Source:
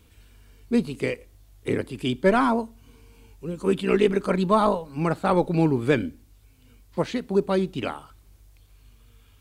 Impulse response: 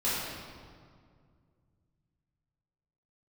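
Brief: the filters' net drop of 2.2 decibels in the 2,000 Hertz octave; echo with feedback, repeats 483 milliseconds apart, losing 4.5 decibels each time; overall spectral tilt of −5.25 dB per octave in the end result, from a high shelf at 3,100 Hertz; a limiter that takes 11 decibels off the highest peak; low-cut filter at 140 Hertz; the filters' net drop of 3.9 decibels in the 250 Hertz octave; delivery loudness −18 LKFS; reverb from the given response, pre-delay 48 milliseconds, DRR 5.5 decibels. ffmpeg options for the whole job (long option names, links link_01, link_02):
-filter_complex "[0:a]highpass=140,equalizer=frequency=250:width_type=o:gain=-4.5,equalizer=frequency=2000:width_type=o:gain=-5,highshelf=frequency=3100:gain=6,alimiter=limit=-19.5dB:level=0:latency=1,aecho=1:1:483|966|1449|1932|2415|2898|3381|3864|4347:0.596|0.357|0.214|0.129|0.0772|0.0463|0.0278|0.0167|0.01,asplit=2[link_01][link_02];[1:a]atrim=start_sample=2205,adelay=48[link_03];[link_02][link_03]afir=irnorm=-1:irlink=0,volume=-15.5dB[link_04];[link_01][link_04]amix=inputs=2:normalize=0,volume=11dB"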